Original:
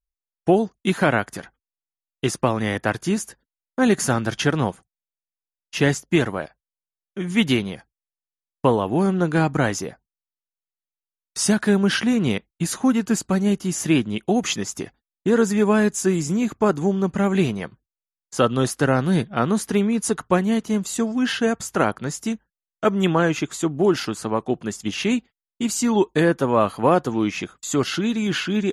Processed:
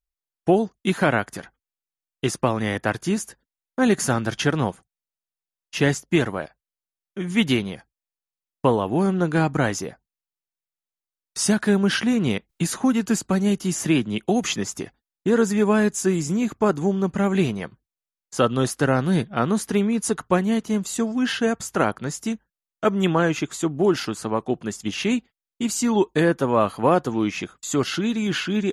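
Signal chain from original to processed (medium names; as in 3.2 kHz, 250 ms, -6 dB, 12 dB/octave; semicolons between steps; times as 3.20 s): 12.49–14.77 s: three bands compressed up and down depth 40%; trim -1 dB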